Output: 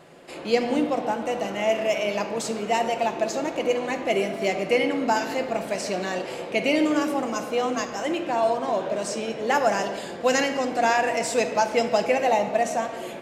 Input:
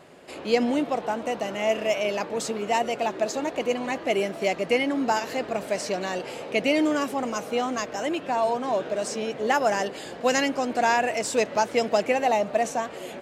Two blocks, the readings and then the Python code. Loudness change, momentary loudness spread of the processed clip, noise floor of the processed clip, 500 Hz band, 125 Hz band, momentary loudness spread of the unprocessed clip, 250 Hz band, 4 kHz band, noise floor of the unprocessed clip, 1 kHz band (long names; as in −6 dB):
+1.0 dB, 6 LU, −35 dBFS, +1.5 dB, +2.0 dB, 6 LU, +1.0 dB, +0.5 dB, −39 dBFS, +1.0 dB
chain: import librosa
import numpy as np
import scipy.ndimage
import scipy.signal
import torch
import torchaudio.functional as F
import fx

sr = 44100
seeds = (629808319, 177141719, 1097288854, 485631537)

y = fx.room_shoebox(x, sr, seeds[0], volume_m3=1000.0, walls='mixed', distance_m=0.8)